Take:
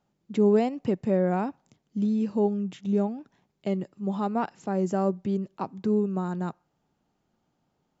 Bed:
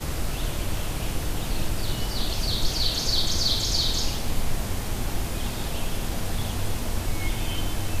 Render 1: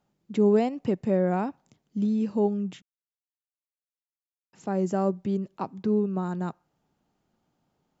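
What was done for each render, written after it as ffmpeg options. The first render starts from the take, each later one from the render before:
ffmpeg -i in.wav -filter_complex "[0:a]asettb=1/sr,asplit=3[link_01][link_02][link_03];[link_01]atrim=end=5.834[link_04];[link_02]atrim=start=5.83:end=6.23,asetpts=PTS-STARTPTS,afade=type=in:duration=0.004:curve=qsin,afade=type=out:start_time=0.396:duration=0.004:curve=qsin,lowpass=frequency=6000:width=0.5412,lowpass=frequency=6000:width=1.3066[link_05];[link_03]atrim=start=6.226[link_06];[link_04][link_05]acrossfade=duration=0.004:curve1=hsin:curve2=qsin[link_07];[link_07][link_06]acrossfade=duration=0.004:curve1=qsin:curve2=hsin,asplit=3[link_08][link_09][link_10];[link_08]atrim=end=2.82,asetpts=PTS-STARTPTS,afade=type=out:start_time=2.816:duration=0.004:curve=hsin[link_11];[link_09]atrim=start=2.82:end=4.53,asetpts=PTS-STARTPTS,volume=0[link_12];[link_10]atrim=start=4.53,asetpts=PTS-STARTPTS,afade=type=in:duration=0.004:curve=hsin[link_13];[link_11][link_12][link_13]concat=n=3:v=0:a=1" out.wav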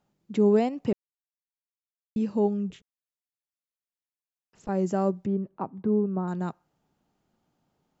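ffmpeg -i in.wav -filter_complex "[0:a]asettb=1/sr,asplit=3[link_01][link_02][link_03];[link_01]atrim=end=2.704[link_04];[link_02]atrim=start=2.7:end=4.69,asetpts=PTS-STARTPTS,afade=type=in:duration=0.004:curve=qsin,afade=type=out:start_time=1.986:duration=0.004:curve=qsin,tremolo=f=250:d=0.974[link_05];[link_03]atrim=start=4.686[link_06];[link_04][link_05]acrossfade=duration=0.004:curve1=hsin:curve2=qsin[link_07];[link_07][link_06]acrossfade=duration=0.004:curve1=qsin:curve2=hsin,asettb=1/sr,asplit=3[link_08][link_09][link_10];[link_08]atrim=end=5.264[link_11];[link_09]atrim=start=5.26:end=6.28,asetpts=PTS-STARTPTS,afade=type=in:duration=0.004:curve=qsin,afade=type=out:start_time=1.016:duration=0.004:curve=qsin,lowpass=1400[link_12];[link_10]atrim=start=6.276[link_13];[link_11][link_12]acrossfade=duration=0.004:curve1=hsin:curve2=qsin[link_14];[link_14][link_13]acrossfade=duration=0.004:curve1=qsin:curve2=hsin,asplit=3[link_15][link_16][link_17];[link_15]atrim=end=0.93,asetpts=PTS-STARTPTS,afade=type=out:start_time=0.926:duration=0.004:curve=hsin[link_18];[link_16]atrim=start=0.93:end=2.16,asetpts=PTS-STARTPTS,volume=0[link_19];[link_17]atrim=start=2.16,asetpts=PTS-STARTPTS,afade=type=in:duration=0.004:curve=hsin[link_20];[link_18][link_19][link_20]concat=n=3:v=0:a=1" out.wav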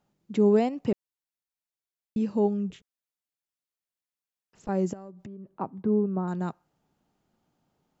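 ffmpeg -i in.wav -filter_complex "[0:a]asettb=1/sr,asplit=3[link_01][link_02][link_03];[link_01]atrim=end=4.934[link_04];[link_02]atrim=start=4.93:end=5.58,asetpts=PTS-STARTPTS,afade=type=in:duration=0.004:curve=qsin,afade=type=out:start_time=0.646:duration=0.004:curve=qsin,acompressor=threshold=-38dB:ratio=20:attack=3.2:release=140:knee=1:detection=peak[link_05];[link_03]atrim=start=5.576[link_06];[link_04][link_05]acrossfade=duration=0.004:curve1=hsin:curve2=qsin[link_07];[link_07][link_06]acrossfade=duration=0.004:curve1=qsin:curve2=hsin" out.wav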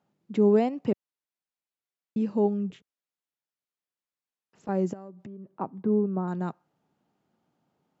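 ffmpeg -i in.wav -af "highpass=120,aemphasis=mode=reproduction:type=cd" out.wav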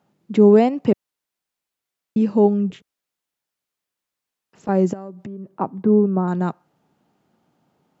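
ffmpeg -i in.wav -af "volume=9dB,alimiter=limit=-3dB:level=0:latency=1" out.wav

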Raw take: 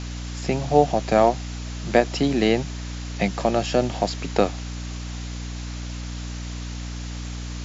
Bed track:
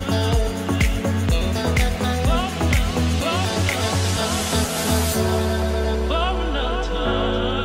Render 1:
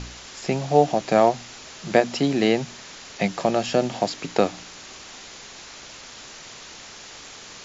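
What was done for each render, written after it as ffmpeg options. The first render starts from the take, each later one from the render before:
ffmpeg -i in.wav -af "bandreject=frequency=60:width_type=h:width=4,bandreject=frequency=120:width_type=h:width=4,bandreject=frequency=180:width_type=h:width=4,bandreject=frequency=240:width_type=h:width=4,bandreject=frequency=300:width_type=h:width=4" out.wav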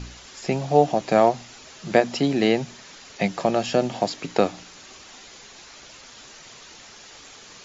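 ffmpeg -i in.wav -af "afftdn=noise_reduction=6:noise_floor=-42" out.wav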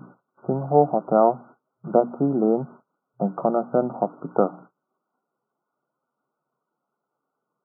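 ffmpeg -i in.wav -af "agate=range=-29dB:threshold=-40dB:ratio=16:detection=peak,afftfilt=real='re*between(b*sr/4096,120,1500)':imag='im*between(b*sr/4096,120,1500)':win_size=4096:overlap=0.75" out.wav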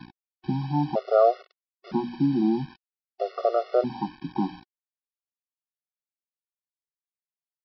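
ffmpeg -i in.wav -af "aresample=11025,acrusher=bits=6:mix=0:aa=0.000001,aresample=44100,afftfilt=real='re*gt(sin(2*PI*0.52*pts/sr)*(1-2*mod(floor(b*sr/1024/370),2)),0)':imag='im*gt(sin(2*PI*0.52*pts/sr)*(1-2*mod(floor(b*sr/1024/370),2)),0)':win_size=1024:overlap=0.75" out.wav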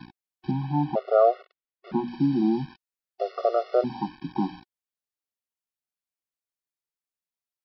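ffmpeg -i in.wav -filter_complex "[0:a]asettb=1/sr,asplit=3[link_01][link_02][link_03];[link_01]atrim=end=0.514[link_04];[link_02]atrim=start=0.51:end=2.08,asetpts=PTS-STARTPTS,afade=type=in:duration=0.004:curve=qsin,afade=type=out:start_time=1.566:duration=0.004:curve=qsin,lowpass=3200[link_05];[link_03]atrim=start=2.076[link_06];[link_04][link_05]acrossfade=duration=0.004:curve1=hsin:curve2=qsin[link_07];[link_07][link_06]acrossfade=duration=0.004:curve1=qsin:curve2=hsin" out.wav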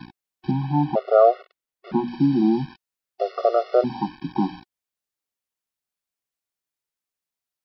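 ffmpeg -i in.wav -af "volume=4dB" out.wav

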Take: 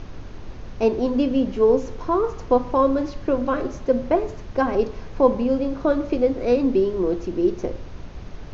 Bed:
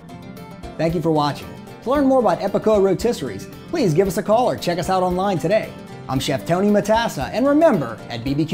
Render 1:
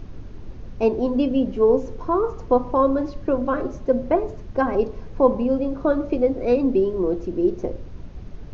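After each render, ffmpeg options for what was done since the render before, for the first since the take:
ffmpeg -i in.wav -af "afftdn=noise_reduction=8:noise_floor=-38" out.wav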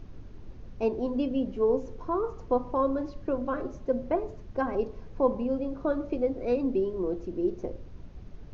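ffmpeg -i in.wav -af "volume=-8dB" out.wav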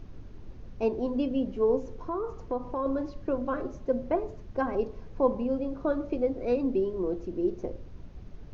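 ffmpeg -i in.wav -filter_complex "[0:a]asettb=1/sr,asplit=3[link_01][link_02][link_03];[link_01]atrim=end=1.944[link_04];[link_02]atrim=start=1.94:end=2.86,asetpts=PTS-STARTPTS,afade=type=in:duration=0.004:curve=qsin,afade=type=out:start_time=0.916:duration=0.004:curve=qsin,acompressor=threshold=-30dB:ratio=2:attack=3.2:release=140:knee=1:detection=peak[link_05];[link_03]atrim=start=2.856[link_06];[link_04][link_05]acrossfade=duration=0.004:curve1=hsin:curve2=qsin[link_07];[link_07][link_06]acrossfade=duration=0.004:curve1=qsin:curve2=hsin" out.wav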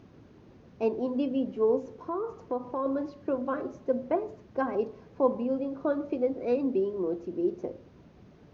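ffmpeg -i in.wav -af "highpass=150,highshelf=frequency=4200:gain=-4.5" out.wav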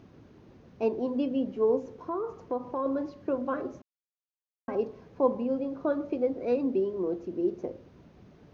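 ffmpeg -i in.wav -filter_complex "[0:a]asplit=3[link_01][link_02][link_03];[link_01]atrim=end=3.82,asetpts=PTS-STARTPTS,afade=type=out:start_time=3.816:duration=0.004:curve=hsin[link_04];[link_02]atrim=start=3.82:end=4.68,asetpts=PTS-STARTPTS,volume=0[link_05];[link_03]atrim=start=4.68,asetpts=PTS-STARTPTS,afade=type=in:duration=0.004:curve=hsin[link_06];[link_04][link_05][link_06]concat=n=3:v=0:a=1" out.wav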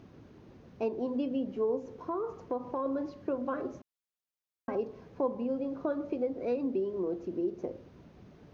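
ffmpeg -i in.wav -af "acompressor=threshold=-31dB:ratio=2" out.wav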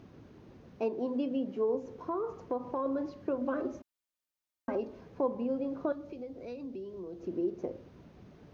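ffmpeg -i in.wav -filter_complex "[0:a]asettb=1/sr,asplit=3[link_01][link_02][link_03];[link_01]atrim=end=0.774[link_04];[link_02]atrim=start=0.77:end=1.75,asetpts=PTS-STARTPTS,afade=type=in:duration=0.004:curve=qsin,afade=type=out:start_time=0.976:duration=0.004:curve=qsin,highpass=140[link_05];[link_03]atrim=start=1.746[link_06];[link_04][link_05]acrossfade=duration=0.004:curve1=hsin:curve2=qsin[link_07];[link_07][link_06]acrossfade=duration=0.004:curve1=qsin:curve2=hsin,asettb=1/sr,asplit=3[link_08][link_09][link_10];[link_08]atrim=end=3.414[link_11];[link_09]atrim=start=3.41:end=5.01,asetpts=PTS-STARTPTS,afade=type=in:duration=0.004:curve=qsin,afade=type=out:start_time=1.596:duration=0.004:curve=qsin,aecho=1:1:3.3:0.51,atrim=end_sample=70560[link_12];[link_10]atrim=start=5.006[link_13];[link_11][link_12]acrossfade=duration=0.004:curve1=hsin:curve2=qsin[link_14];[link_14][link_13]acrossfade=duration=0.004:curve1=qsin:curve2=hsin,asettb=1/sr,asplit=3[link_15][link_16][link_17];[link_15]atrim=end=5.924[link_18];[link_16]atrim=start=5.92:end=7.23,asetpts=PTS-STARTPTS,afade=type=in:duration=0.004:curve=qsin,afade=type=out:start_time=1.306:duration=0.004:curve=qsin,acrossover=split=140|3000[link_19][link_20][link_21];[link_20]acompressor=threshold=-49dB:ratio=2:attack=3.2:release=140:knee=2.83:detection=peak[link_22];[link_19][link_22][link_21]amix=inputs=3:normalize=0[link_23];[link_17]atrim=start=7.226[link_24];[link_18][link_23]acrossfade=duration=0.004:curve1=hsin:curve2=qsin[link_25];[link_25][link_24]acrossfade=duration=0.004:curve1=qsin:curve2=hsin" out.wav

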